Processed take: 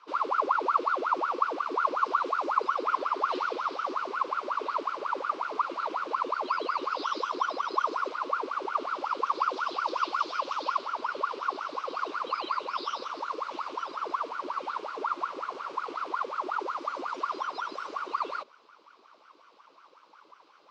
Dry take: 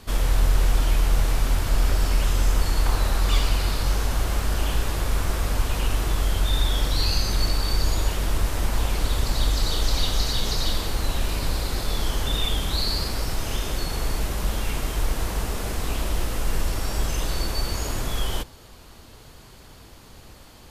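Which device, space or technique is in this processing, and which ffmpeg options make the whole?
voice changer toy: -af "aeval=exprs='val(0)*sin(2*PI*870*n/s+870*0.65/5.5*sin(2*PI*5.5*n/s))':c=same,highpass=450,equalizer=f=720:t=q:w=4:g=-7,equalizer=f=1100:t=q:w=4:g=9,equalizer=f=1800:t=q:w=4:g=-10,equalizer=f=3400:t=q:w=4:g=-3,lowpass=f=4600:w=0.5412,lowpass=f=4600:w=1.3066,volume=0.398"

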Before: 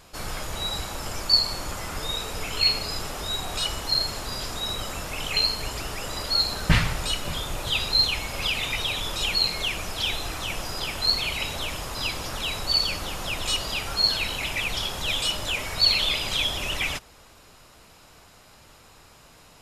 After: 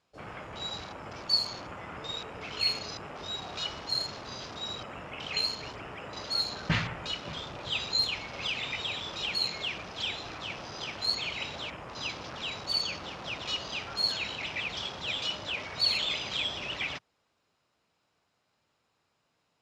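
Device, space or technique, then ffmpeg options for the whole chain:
over-cleaned archive recording: -af "highpass=110,lowpass=5900,afwtdn=0.0126,volume=0.501"

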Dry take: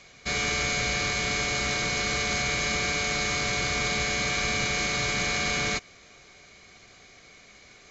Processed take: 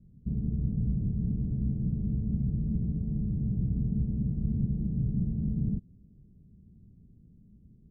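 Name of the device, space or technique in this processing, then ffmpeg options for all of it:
the neighbour's flat through the wall: -af "lowpass=f=210:w=0.5412,lowpass=f=210:w=1.3066,equalizer=f=200:t=o:w=0.77:g=3,volume=2.24"

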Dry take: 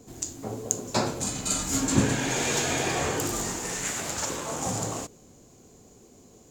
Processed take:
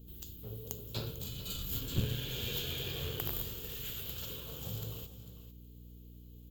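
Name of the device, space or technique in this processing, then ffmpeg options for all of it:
valve amplifier with mains hum: -af "firequalizer=gain_entry='entry(100,0);entry(270,-19);entry(440,-8);entry(730,-25);entry(1400,-15);entry(2000,-20);entry(3100,2);entry(5900,-19);entry(9600,-18);entry(14000,13)':delay=0.05:min_phase=1,aecho=1:1:447:0.211,aeval=exprs='(tanh(8.91*val(0)+0.65)-tanh(0.65))/8.91':c=same,aeval=exprs='val(0)+0.00282*(sin(2*PI*60*n/s)+sin(2*PI*2*60*n/s)/2+sin(2*PI*3*60*n/s)/3+sin(2*PI*4*60*n/s)/4+sin(2*PI*5*60*n/s)/5)':c=same"

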